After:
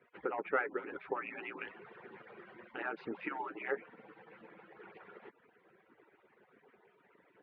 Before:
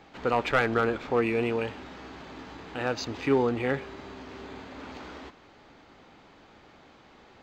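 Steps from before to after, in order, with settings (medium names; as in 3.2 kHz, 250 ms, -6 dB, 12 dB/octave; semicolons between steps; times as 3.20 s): harmonic-percussive separation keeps percussive; low-pass that closes with the level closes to 1.8 kHz, closed at -27.5 dBFS; cabinet simulation 240–2300 Hz, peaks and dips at 410 Hz +4 dB, 650 Hz -9 dB, 1.1 kHz -6 dB; gain riding within 3 dB 2 s; trim -4 dB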